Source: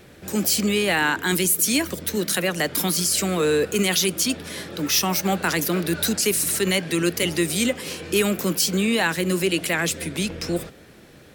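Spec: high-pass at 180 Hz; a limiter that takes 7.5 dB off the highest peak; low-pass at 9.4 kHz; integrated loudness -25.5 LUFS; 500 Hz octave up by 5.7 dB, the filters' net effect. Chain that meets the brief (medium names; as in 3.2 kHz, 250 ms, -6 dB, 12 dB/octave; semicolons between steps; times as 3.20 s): high-pass 180 Hz; low-pass 9.4 kHz; peaking EQ 500 Hz +7.5 dB; trim -2.5 dB; peak limiter -15.5 dBFS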